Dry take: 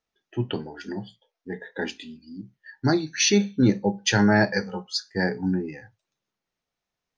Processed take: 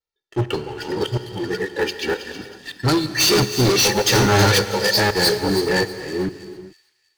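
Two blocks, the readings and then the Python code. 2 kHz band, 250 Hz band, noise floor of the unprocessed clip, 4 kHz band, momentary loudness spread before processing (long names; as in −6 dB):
+6.0 dB, +1.0 dB, below −85 dBFS, +10.5 dB, 18 LU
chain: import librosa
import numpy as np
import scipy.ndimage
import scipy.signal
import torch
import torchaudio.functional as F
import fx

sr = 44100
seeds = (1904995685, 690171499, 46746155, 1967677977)

p1 = fx.reverse_delay(x, sr, ms=393, wet_db=-1.0)
p2 = fx.peak_eq(p1, sr, hz=4400.0, db=8.0, octaves=0.3)
p3 = fx.vibrato(p2, sr, rate_hz=1.3, depth_cents=66.0)
p4 = p3 + 0.68 * np.pad(p3, (int(2.2 * sr / 1000.0), 0))[:len(p3)]
p5 = fx.leveller(p4, sr, passes=3)
p6 = 10.0 ** (-13.0 / 20.0) * np.tanh(p5 / 10.0 ** (-13.0 / 20.0))
p7 = p6 + fx.echo_wet_highpass(p6, sr, ms=320, feedback_pct=36, hz=3300.0, wet_db=-8.5, dry=0)
p8 = fx.rev_gated(p7, sr, seeds[0], gate_ms=450, shape='flat', drr_db=8.0)
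y = fx.upward_expand(p8, sr, threshold_db=-23.0, expansion=1.5)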